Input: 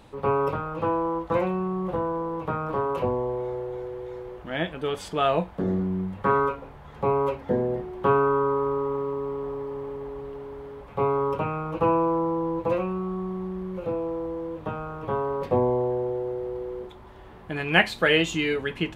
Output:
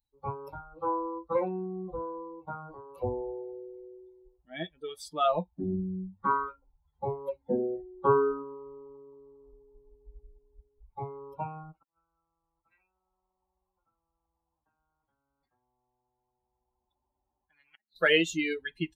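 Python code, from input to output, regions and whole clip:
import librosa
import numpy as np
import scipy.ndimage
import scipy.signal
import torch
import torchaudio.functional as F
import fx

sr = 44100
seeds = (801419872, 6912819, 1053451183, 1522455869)

y = fx.chain(x, sr, fx.lowpass(hz=2900.0, slope=12),
    fx.low_shelf(hz=95.0, db=6.5),
    fx.comb_fb(f0_hz=210.0, decay_s=0.19, harmonics='all', damping=0.0, mix_pct=30), at=(9.51, 10.9))
y = fx.chain(y, sr, fx.gate_flip(shuts_db=-11.0, range_db=-34),
    fx.bandpass_q(hz=280.0, q=2.6),
    fx.spectral_comp(ratio=10.0), at=(11.72, 17.96))
y = fx.bin_expand(y, sr, power=2.0)
y = fx.noise_reduce_blind(y, sr, reduce_db=13)
y = fx.peak_eq(y, sr, hz=190.0, db=-4.0, octaves=0.37)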